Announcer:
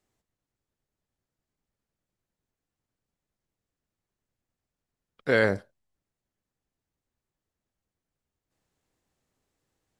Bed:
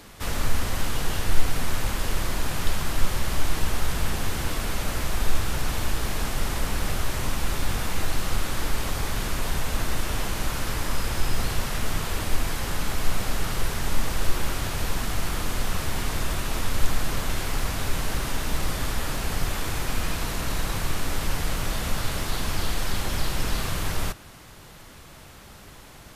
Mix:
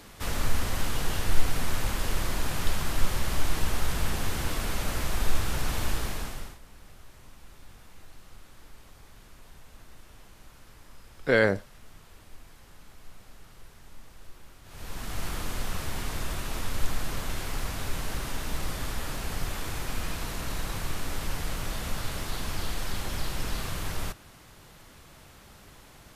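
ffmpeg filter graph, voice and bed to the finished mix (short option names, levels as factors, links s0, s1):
-filter_complex "[0:a]adelay=6000,volume=1.06[s0];[1:a]volume=6.68,afade=t=out:st=5.93:d=0.65:silence=0.0794328,afade=t=in:st=14.64:d=0.61:silence=0.112202[s1];[s0][s1]amix=inputs=2:normalize=0"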